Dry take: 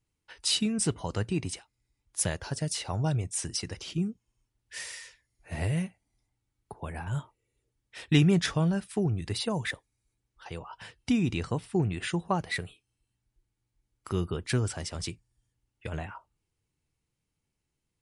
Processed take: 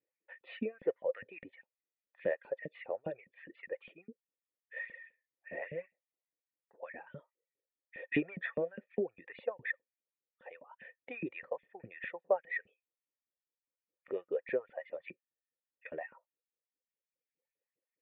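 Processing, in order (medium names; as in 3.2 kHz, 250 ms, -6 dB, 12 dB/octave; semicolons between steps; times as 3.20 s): reverb removal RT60 1.3 s; LFO high-pass saw up 4.9 Hz 200–2800 Hz; cascade formant filter e; trim +6.5 dB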